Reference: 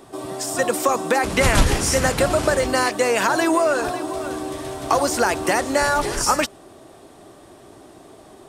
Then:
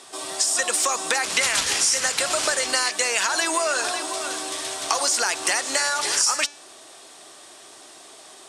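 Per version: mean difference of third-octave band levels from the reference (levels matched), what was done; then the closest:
8.5 dB: meter weighting curve ITU-R 468
downward compressor 4 to 1, threshold −19 dBFS, peak gain reduction 9.5 dB
hum removal 289.5 Hz, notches 30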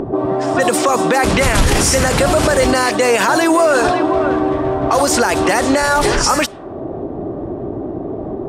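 5.5 dB: low-pass that shuts in the quiet parts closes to 420 Hz, open at −16 dBFS
upward compression, threshold −24 dBFS
boost into a limiter +15.5 dB
level −3.5 dB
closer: second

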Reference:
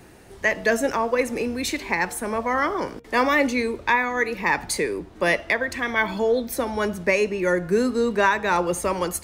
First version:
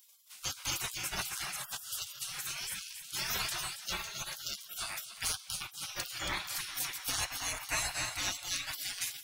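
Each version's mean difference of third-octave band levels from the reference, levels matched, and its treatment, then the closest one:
17.5 dB: high-shelf EQ 11,000 Hz +5.5 dB
on a send: echo with a time of its own for lows and highs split 310 Hz, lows 628 ms, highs 276 ms, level −10.5 dB
on the sum: gate on every frequency bin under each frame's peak −30 dB weak
parametric band 390 Hz −4 dB 1.6 octaves
level +6.5 dB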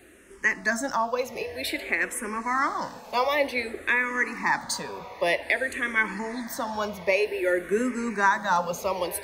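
5.5 dB: low-shelf EQ 210 Hz −8.5 dB
notch filter 460 Hz, Q 12
on a send: feedback delay with all-pass diffusion 977 ms, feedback 62%, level −16 dB
on the sum: frequency shifter mixed with the dry sound −0.53 Hz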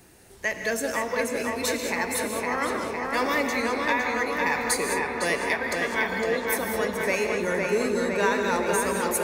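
8.0 dB: high-shelf EQ 4,400 Hz +10.5 dB
on a send: feedback echo with a low-pass in the loop 508 ms, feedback 76%, low-pass 4,000 Hz, level −3 dB
on the sum: reverb whose tail is shaped and stops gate 230 ms rising, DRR 5.5 dB
level −7.5 dB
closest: second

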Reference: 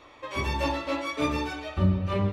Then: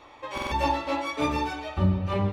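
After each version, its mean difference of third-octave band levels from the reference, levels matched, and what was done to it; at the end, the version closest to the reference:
1.0 dB: parametric band 840 Hz +9 dB 0.25 octaves
buffer that repeats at 0:00.33, samples 2,048, times 3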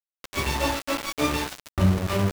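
8.0 dB: high-shelf EQ 7,200 Hz +5.5 dB
centre clipping without the shift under −27.5 dBFS
level +3 dB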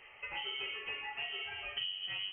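13.0 dB: downward compressor 6 to 1, threshold −34 dBFS, peak gain reduction 15.5 dB
voice inversion scrambler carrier 3,100 Hz
level −4 dB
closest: first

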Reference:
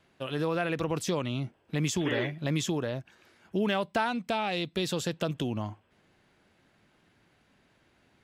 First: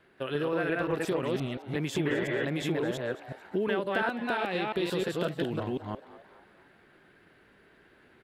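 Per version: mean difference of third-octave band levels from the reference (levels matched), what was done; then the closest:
7.0 dB: delay that plays each chunk backwards 175 ms, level −0.5 dB
graphic EQ with 15 bands 100 Hz −3 dB, 400 Hz +8 dB, 1,600 Hz +8 dB, 6,300 Hz −10 dB
downward compressor 2 to 1, threshold −31 dBFS, peak gain reduction 8 dB
on a send: echo with shifted repeats 223 ms, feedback 45%, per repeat +150 Hz, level −16.5 dB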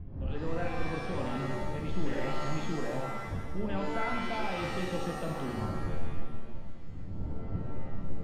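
11.5 dB: wind on the microphone 120 Hz −34 dBFS
reversed playback
downward compressor 6 to 1, threshold −35 dBFS, peak gain reduction 17.5 dB
reversed playback
high-frequency loss of the air 430 metres
reverb with rising layers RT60 1.2 s, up +7 semitones, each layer −2 dB, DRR 1 dB
level +1.5 dB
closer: first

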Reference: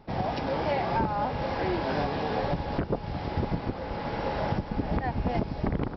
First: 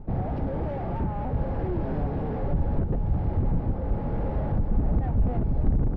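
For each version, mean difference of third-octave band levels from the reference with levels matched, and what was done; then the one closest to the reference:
7.0 dB: soft clipping −32.5 dBFS, distortion −7 dB
low-pass filter 1,300 Hz 6 dB per octave
spectral tilt −4 dB per octave
notch filter 1,000 Hz, Q 22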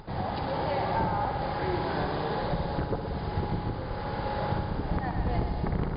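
2.5 dB: graphic EQ with 15 bands 250 Hz −7 dB, 630 Hz −5 dB, 2,500 Hz −7 dB
upward compression, threshold −38 dBFS
on a send: echo machine with several playback heads 61 ms, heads first and second, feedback 71%, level −10 dB
on the sum: MP2 64 kbit/s 16,000 Hz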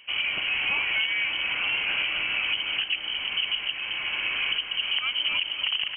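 15.5 dB: high-pass filter 44 Hz
delay with a high-pass on its return 273 ms, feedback 60%, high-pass 1,400 Hz, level −9 dB
voice inversion scrambler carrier 3,100 Hz
in parallel at +2 dB: brickwall limiter −21.5 dBFS, peak gain reduction 8 dB
on the sum: level −4.5 dB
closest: second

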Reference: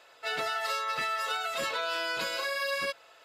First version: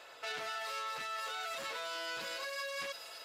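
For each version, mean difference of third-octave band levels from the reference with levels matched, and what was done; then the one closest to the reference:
4.0 dB: brickwall limiter −31 dBFS, peak gain reduction 10.5 dB
speech leveller 0.5 s
on a send: delay with a high-pass on its return 259 ms, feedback 69%, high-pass 4,800 Hz, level −5.5 dB
on the sum: saturating transformer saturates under 2,600 Hz
level +1 dB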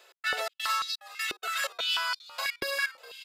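10.0 dB: spectral tilt +3 dB per octave
gate pattern "x.xx.xxx.." 126 BPM −60 dB
on a send: echo with shifted repeats 413 ms, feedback 52%, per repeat −81 Hz, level −17 dB
on the sum: high-pass on a step sequencer 6.1 Hz 380–4,300 Hz
level −4.5 dB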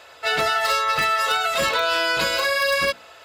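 1.0 dB: parametric band 68 Hz +14.5 dB 1.5 octaves
mains-hum notches 60/120/180/240/300/360/420/480 Hz
in parallel at −8.5 dB: wrap-around overflow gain 22 dB
on the sum: level +8 dB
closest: third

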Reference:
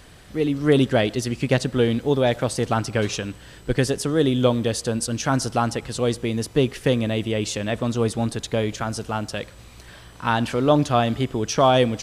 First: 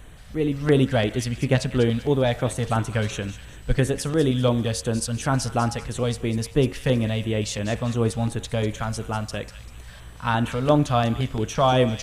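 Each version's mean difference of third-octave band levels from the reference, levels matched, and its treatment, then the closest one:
2.0 dB: low-shelf EQ 75 Hz +12 dB
hum removal 91.76 Hz, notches 30
auto-filter notch square 2.9 Hz 340–4,900 Hz
delay with a high-pass on its return 196 ms, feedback 37%, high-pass 1,900 Hz, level −11 dB
level −1.5 dB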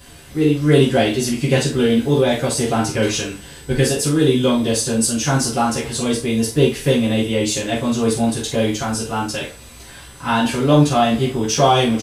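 5.0 dB: high-shelf EQ 7,100 Hz +9 dB
in parallel at −8.5 dB: soft clipping −17 dBFS, distortion −11 dB
on the sum: ambience of single reflections 13 ms −6.5 dB, 45 ms −6.5 dB
coupled-rooms reverb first 0.24 s, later 1.5 s, from −27 dB, DRR −6.5 dB
level −7 dB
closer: first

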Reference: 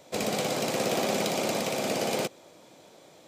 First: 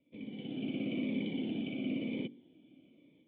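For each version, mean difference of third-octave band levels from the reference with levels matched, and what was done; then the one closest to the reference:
15.5 dB: formant resonators in series i
automatic gain control gain up to 10 dB
hum removal 47.81 Hz, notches 9
phaser whose notches keep moving one way falling 1 Hz
level −5.5 dB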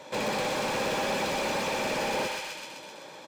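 5.5 dB: Butterworth band-reject 700 Hz, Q 4.5
comb filter 1.2 ms, depth 36%
feedback echo with a high-pass in the loop 128 ms, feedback 63%, high-pass 1,100 Hz, level −4.5 dB
mid-hump overdrive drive 24 dB, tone 1,500 Hz, clips at −15.5 dBFS
level −3.5 dB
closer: second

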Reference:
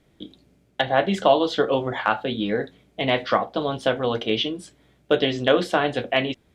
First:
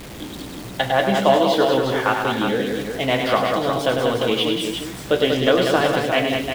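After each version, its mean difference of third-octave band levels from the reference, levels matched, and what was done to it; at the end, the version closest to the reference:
10.0 dB: converter with a step at zero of −31 dBFS
on a send: multi-tap delay 102/192/356 ms −6.5/−5/−6.5 dB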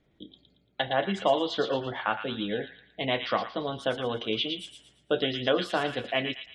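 3.0 dB: gate on every frequency bin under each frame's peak −30 dB strong
dynamic equaliser 3,800 Hz, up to +3 dB, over −37 dBFS, Q 1.6
delay with a high-pass on its return 114 ms, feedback 38%, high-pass 1,900 Hz, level −4 dB
level −7 dB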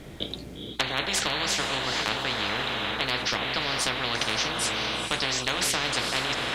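13.5 dB: feedback delay with all-pass diffusion 453 ms, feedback 40%, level −11.5 dB
every bin compressed towards the loudest bin 10 to 1
level −4 dB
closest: second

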